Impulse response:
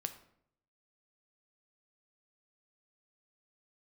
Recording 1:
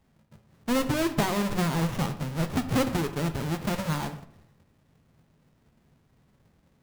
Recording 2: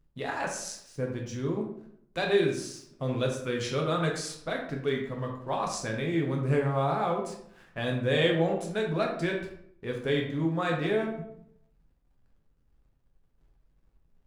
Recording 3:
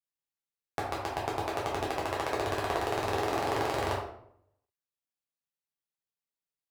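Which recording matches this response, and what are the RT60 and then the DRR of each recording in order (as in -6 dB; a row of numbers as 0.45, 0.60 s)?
1; 0.70, 0.70, 0.70 s; 8.0, -0.5, -5.5 dB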